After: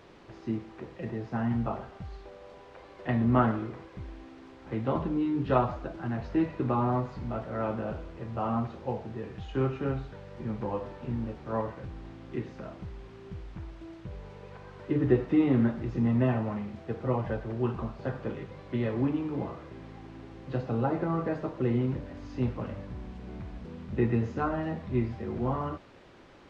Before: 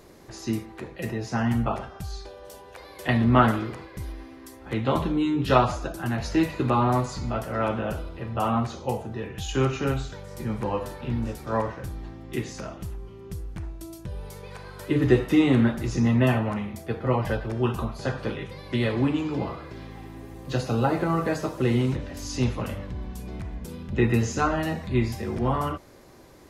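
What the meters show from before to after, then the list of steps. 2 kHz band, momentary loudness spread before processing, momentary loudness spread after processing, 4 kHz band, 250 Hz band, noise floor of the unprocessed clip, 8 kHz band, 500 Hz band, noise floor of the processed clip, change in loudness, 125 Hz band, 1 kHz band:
−9.5 dB, 18 LU, 18 LU, below −10 dB, −4.0 dB, −46 dBFS, below −20 dB, −4.5 dB, −51 dBFS, −5.0 dB, −5.0 dB, −6.5 dB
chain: low-shelf EQ 72 Hz −8 dB
background noise white −42 dBFS
head-to-tape spacing loss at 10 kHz 41 dB
level −2.5 dB

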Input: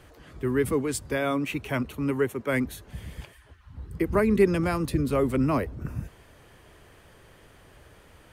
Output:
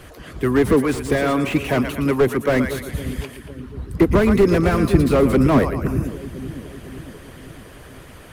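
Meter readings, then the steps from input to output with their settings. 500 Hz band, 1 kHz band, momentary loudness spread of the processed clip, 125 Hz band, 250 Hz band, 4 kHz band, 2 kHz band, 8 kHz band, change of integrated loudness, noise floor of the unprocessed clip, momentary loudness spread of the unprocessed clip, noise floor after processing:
+8.0 dB, +8.0 dB, 19 LU, +9.0 dB, +9.0 dB, +8.5 dB, +7.0 dB, +3.5 dB, +8.0 dB, −55 dBFS, 19 LU, −42 dBFS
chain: on a send: echo with a time of its own for lows and highs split 410 Hz, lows 506 ms, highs 115 ms, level −12 dB
on the sum: harmonic and percussive parts rebalanced percussive +8 dB
parametric band 11,000 Hz +5 dB 0.3 octaves
notch filter 860 Hz, Q 15
slew-rate limiting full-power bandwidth 67 Hz
level +6 dB

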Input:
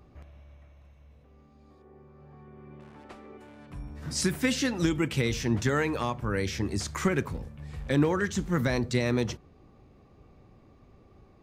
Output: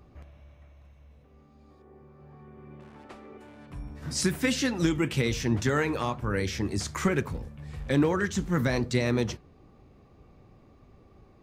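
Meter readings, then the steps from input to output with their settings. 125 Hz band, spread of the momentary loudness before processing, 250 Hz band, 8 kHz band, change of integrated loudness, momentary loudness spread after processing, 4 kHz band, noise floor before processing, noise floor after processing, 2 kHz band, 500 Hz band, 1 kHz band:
+0.5 dB, 17 LU, +0.5 dB, +0.5 dB, +0.5 dB, 16 LU, +0.5 dB, −57 dBFS, −57 dBFS, +0.5 dB, +0.5 dB, +0.5 dB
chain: flanger 1.1 Hz, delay 0.4 ms, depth 8.3 ms, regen −80%
level +5 dB

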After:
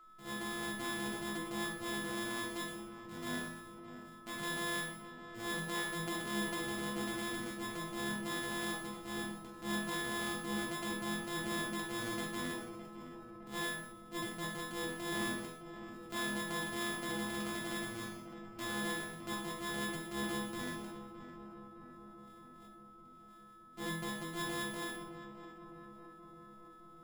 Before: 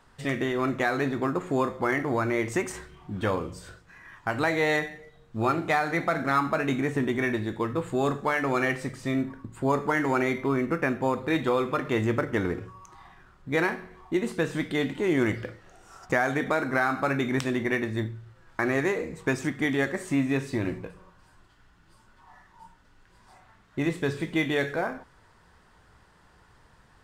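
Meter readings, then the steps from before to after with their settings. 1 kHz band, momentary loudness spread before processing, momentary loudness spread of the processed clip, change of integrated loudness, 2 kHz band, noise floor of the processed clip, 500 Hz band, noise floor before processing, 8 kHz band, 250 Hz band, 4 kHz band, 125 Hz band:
−12.0 dB, 10 LU, 16 LU, −12.0 dB, −10.5 dB, −56 dBFS, −16.5 dB, −59 dBFS, +1.0 dB, −12.5 dB, −1.0 dB, −15.5 dB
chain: samples sorted by size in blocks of 128 samples
resonators tuned to a chord E3 major, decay 0.5 s
feedback echo with a low-pass in the loop 612 ms, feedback 69%, low-pass 1,500 Hz, level −10.5 dB
steady tone 1,300 Hz −65 dBFS
transient designer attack −6 dB, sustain +3 dB
level +8.5 dB

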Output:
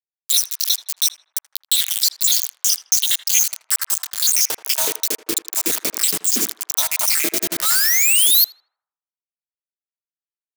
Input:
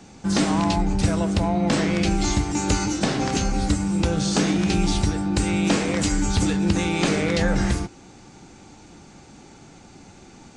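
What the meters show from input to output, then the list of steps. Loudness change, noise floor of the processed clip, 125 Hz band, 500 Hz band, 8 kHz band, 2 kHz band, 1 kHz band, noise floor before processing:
+6.0 dB, below −85 dBFS, below −25 dB, −9.5 dB, +14.0 dB, +2.0 dB, −8.0 dB, −47 dBFS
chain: time-frequency cells dropped at random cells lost 81%
high-shelf EQ 6,100 Hz +7.5 dB
downward compressor 8 to 1, threshold −28 dBFS, peak gain reduction 12.5 dB
notch filter 2,700 Hz, Q 6.9
ring modulation 140 Hz
high-pass filter sweep 3,700 Hz → 270 Hz, 0:02.78–0:05.41
sound drawn into the spectrogram rise, 0:07.62–0:08.45, 1,200–4,500 Hz −37 dBFS
high-pass filter 71 Hz 12 dB per octave
bit reduction 6 bits
first-order pre-emphasis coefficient 0.9
feedback echo with a band-pass in the loop 80 ms, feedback 51%, band-pass 960 Hz, level −13 dB
boost into a limiter +24.5 dB
level −2.5 dB

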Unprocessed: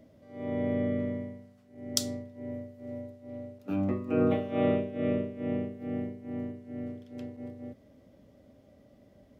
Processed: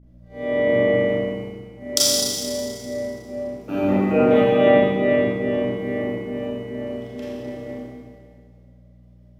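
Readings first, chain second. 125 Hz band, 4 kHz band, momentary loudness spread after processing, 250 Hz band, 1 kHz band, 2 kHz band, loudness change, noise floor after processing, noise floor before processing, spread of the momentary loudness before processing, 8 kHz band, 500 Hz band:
+6.5 dB, +16.0 dB, 17 LU, +8.0 dB, +14.0 dB, +18.0 dB, +12.0 dB, −49 dBFS, −60 dBFS, 16 LU, +16.0 dB, +14.0 dB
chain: sub-octave generator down 1 octave, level 0 dB
downward expander −43 dBFS
high-pass filter 340 Hz 12 dB per octave
mains hum 60 Hz, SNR 19 dB
four-comb reverb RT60 1.9 s, combs from 28 ms, DRR −8.5 dB
level +6.5 dB

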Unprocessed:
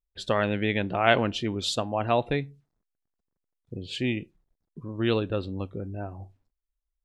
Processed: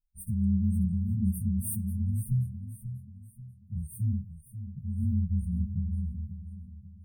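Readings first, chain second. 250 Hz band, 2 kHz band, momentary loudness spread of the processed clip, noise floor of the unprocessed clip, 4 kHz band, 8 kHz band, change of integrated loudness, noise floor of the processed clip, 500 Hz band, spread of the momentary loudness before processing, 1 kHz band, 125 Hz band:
−0.5 dB, below −40 dB, 16 LU, −83 dBFS, below −40 dB, +1.0 dB, −3.5 dB, −55 dBFS, below −40 dB, 17 LU, below −40 dB, +5.0 dB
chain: partials spread apart or drawn together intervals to 122%
linear-phase brick-wall band-stop 220–8,500 Hz
feedback echo with a swinging delay time 538 ms, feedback 40%, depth 84 cents, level −11 dB
level +6.5 dB

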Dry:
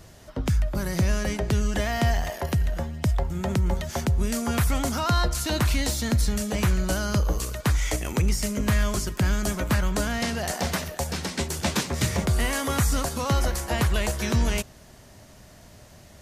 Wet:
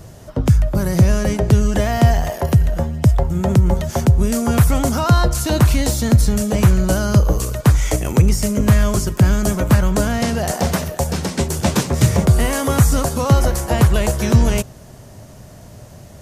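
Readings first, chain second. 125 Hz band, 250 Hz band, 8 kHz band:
+11.0 dB, +9.5 dB, +6.0 dB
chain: octave-band graphic EQ 125/500/2,000/4,000 Hz +7/+3/−4/−4 dB
level +7 dB

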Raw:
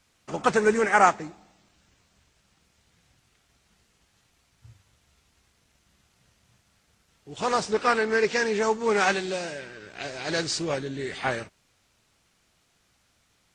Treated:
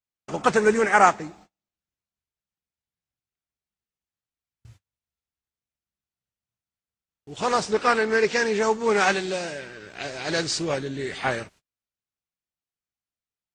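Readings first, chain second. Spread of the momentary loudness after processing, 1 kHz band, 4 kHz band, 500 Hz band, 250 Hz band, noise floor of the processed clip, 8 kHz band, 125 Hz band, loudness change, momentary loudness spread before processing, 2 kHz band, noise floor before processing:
16 LU, +2.0 dB, +2.0 dB, +2.0 dB, +2.0 dB, below −85 dBFS, +2.0 dB, +2.0 dB, +2.5 dB, 16 LU, +2.0 dB, −68 dBFS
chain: noise gate −52 dBFS, range −33 dB
level +2 dB

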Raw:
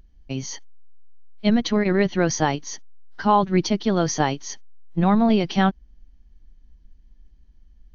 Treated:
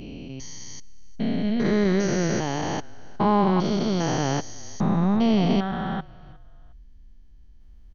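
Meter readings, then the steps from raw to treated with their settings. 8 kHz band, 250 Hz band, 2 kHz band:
can't be measured, −1.0 dB, −4.0 dB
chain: spectrum averaged block by block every 400 ms
echo with shifted repeats 359 ms, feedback 35%, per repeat −37 Hz, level −22.5 dB
level +3 dB

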